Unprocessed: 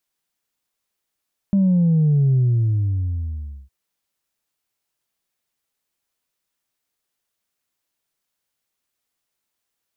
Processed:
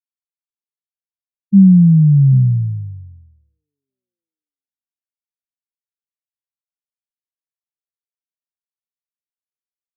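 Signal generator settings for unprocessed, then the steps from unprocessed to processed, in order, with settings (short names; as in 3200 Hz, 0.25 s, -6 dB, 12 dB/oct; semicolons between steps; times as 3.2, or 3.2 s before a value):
sub drop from 200 Hz, over 2.16 s, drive 0.5 dB, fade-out 1.35 s, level -13.5 dB
graphic EQ 125/250/500 Hz +5/+11/+6 dB; delay with a stepping band-pass 0.788 s, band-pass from 260 Hz, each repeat 0.7 oct, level -8 dB; spectral expander 2.5:1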